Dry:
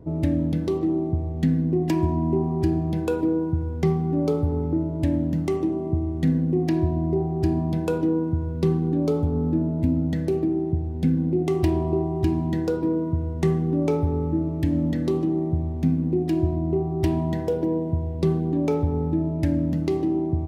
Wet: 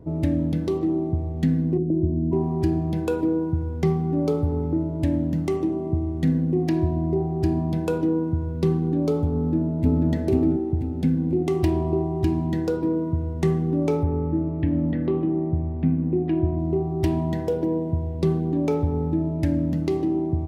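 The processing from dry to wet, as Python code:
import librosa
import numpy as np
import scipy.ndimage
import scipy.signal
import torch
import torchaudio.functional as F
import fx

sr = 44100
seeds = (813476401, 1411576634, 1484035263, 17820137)

y = fx.steep_lowpass(x, sr, hz=590.0, slope=48, at=(1.77, 2.31), fade=0.02)
y = fx.echo_throw(y, sr, start_s=9.36, length_s=0.71, ms=490, feedback_pct=40, wet_db=-0.5)
y = fx.lowpass(y, sr, hz=2800.0, slope=24, at=(14.03, 16.59))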